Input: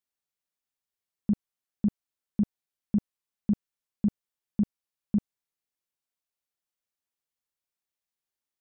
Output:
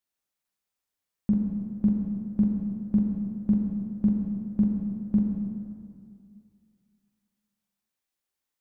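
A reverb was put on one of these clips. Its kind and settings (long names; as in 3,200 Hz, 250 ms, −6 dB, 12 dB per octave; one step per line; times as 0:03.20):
dense smooth reverb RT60 2.3 s, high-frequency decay 0.65×, DRR 0 dB
level +1.5 dB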